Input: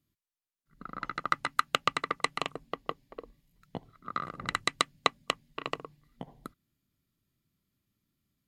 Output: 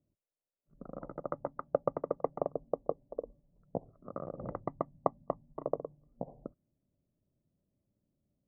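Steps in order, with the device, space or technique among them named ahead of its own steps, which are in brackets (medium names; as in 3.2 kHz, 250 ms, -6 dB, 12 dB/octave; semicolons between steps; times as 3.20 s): 4.66–5.65 s: comb 1 ms, depth 58%; under water (low-pass 790 Hz 24 dB/octave; peaking EQ 570 Hz +11 dB 0.57 oct)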